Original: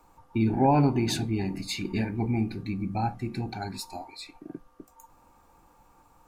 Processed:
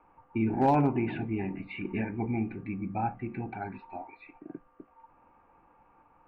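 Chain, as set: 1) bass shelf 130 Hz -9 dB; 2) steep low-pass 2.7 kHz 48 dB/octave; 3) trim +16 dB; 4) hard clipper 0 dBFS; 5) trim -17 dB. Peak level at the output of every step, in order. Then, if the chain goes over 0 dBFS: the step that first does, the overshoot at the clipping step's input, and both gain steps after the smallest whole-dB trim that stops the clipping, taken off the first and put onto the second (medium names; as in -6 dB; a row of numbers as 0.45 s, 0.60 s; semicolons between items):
-12.5 dBFS, -12.5 dBFS, +3.5 dBFS, 0.0 dBFS, -17.0 dBFS; step 3, 3.5 dB; step 3 +12 dB, step 5 -13 dB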